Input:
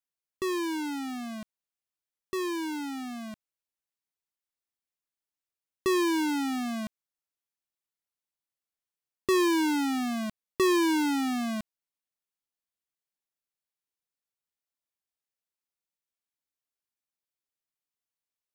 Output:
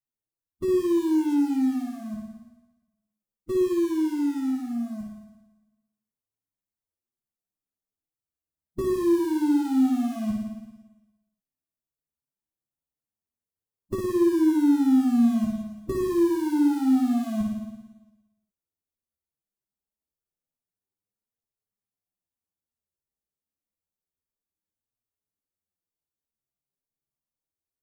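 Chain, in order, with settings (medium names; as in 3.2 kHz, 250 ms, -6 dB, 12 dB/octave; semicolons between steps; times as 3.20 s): peaking EQ 2.8 kHz -14 dB 2.1 oct; in parallel at -6.5 dB: small samples zeroed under -36 dBFS; on the sum: compression 16:1, threshold -27 dBFS, peak gain reduction 8 dB; on a send: flutter echo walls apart 6.5 m, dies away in 0.75 s; on the sum: flange 0.42 Hz, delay 8.4 ms, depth 7.1 ms, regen -2%; bass shelf 360 Hz +10.5 dB; time stretch by phase-locked vocoder 1.5×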